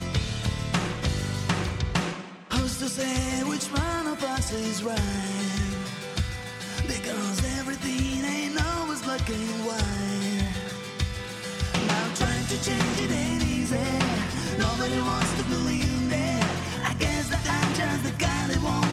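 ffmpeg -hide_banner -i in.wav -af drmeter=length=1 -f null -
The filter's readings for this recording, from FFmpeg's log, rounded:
Channel 1: DR: 13.5
Overall DR: 13.5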